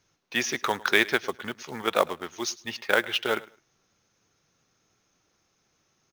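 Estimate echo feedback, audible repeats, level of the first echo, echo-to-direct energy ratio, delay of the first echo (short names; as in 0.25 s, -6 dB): 21%, 2, -21.0 dB, -21.0 dB, 0.105 s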